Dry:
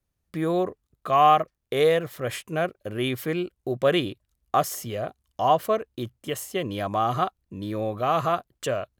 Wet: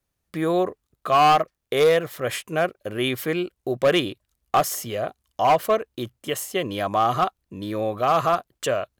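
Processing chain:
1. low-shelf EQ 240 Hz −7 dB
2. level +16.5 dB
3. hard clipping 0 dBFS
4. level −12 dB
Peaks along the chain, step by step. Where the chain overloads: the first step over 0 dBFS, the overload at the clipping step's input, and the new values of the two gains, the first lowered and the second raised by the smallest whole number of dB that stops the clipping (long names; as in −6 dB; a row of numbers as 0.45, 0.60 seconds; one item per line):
−8.0, +8.5, 0.0, −12.0 dBFS
step 2, 8.5 dB
step 2 +7.5 dB, step 4 −3 dB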